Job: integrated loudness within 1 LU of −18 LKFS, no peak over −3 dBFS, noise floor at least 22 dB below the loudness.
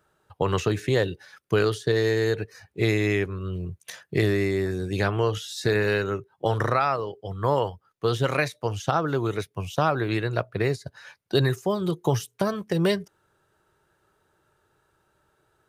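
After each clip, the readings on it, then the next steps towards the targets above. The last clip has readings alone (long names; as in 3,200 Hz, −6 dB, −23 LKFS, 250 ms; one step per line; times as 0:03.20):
integrated loudness −26.0 LKFS; sample peak −7.0 dBFS; target loudness −18.0 LKFS
→ level +8 dB
brickwall limiter −3 dBFS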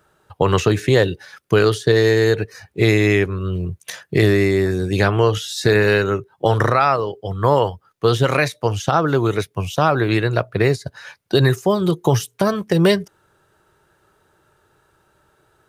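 integrated loudness −18.0 LKFS; sample peak −3.0 dBFS; background noise floor −62 dBFS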